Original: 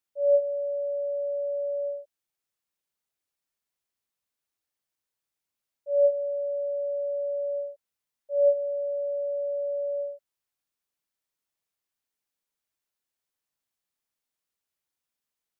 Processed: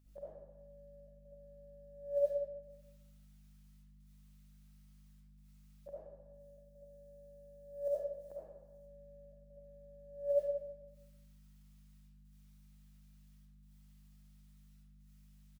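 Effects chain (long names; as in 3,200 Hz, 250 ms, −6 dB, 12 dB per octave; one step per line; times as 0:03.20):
noise gate with hold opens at −31 dBFS
loudspeakers that aren't time-aligned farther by 50 metres −3 dB, 74 metres −11 dB
compressor whose output falls as the input rises −42 dBFS, ratio −0.5
gate pattern "xxxxxxxx..x" 120 BPM −12 dB
mains hum 50 Hz, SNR 16 dB
floating-point word with a short mantissa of 6 bits
0:06.33–0:08.79: bass and treble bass −2 dB, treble +8 dB
convolution reverb RT60 0.90 s, pre-delay 30 ms, DRR −8 dB
one half of a high-frequency compander encoder only
level −5.5 dB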